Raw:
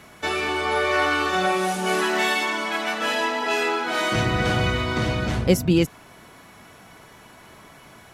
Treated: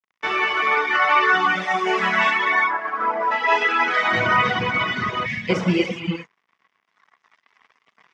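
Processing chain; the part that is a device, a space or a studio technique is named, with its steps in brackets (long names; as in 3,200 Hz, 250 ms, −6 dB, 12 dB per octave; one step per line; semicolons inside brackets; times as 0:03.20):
0:02.30–0:03.30: low-pass filter 2,300 Hz → 1,200 Hz 24 dB per octave
reverb whose tail is shaped and stops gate 430 ms flat, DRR −3 dB
blown loudspeaker (dead-zone distortion −37.5 dBFS; loudspeaker in its box 200–5,000 Hz, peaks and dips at 310 Hz −6 dB, 570 Hz −6 dB, 1,100 Hz +8 dB, 2,000 Hz +9 dB, 4,200 Hz −9 dB)
0:05.26–0:05.50: gain on a spectral selection 250–1,600 Hz −13 dB
reverb reduction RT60 1.8 s
level +1 dB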